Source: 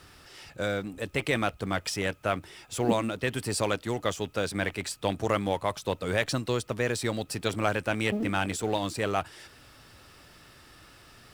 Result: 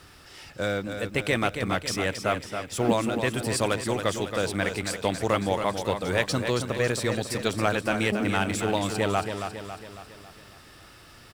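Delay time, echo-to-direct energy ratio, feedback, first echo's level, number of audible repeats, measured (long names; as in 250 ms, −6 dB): 275 ms, −6.0 dB, 52%, −7.5 dB, 5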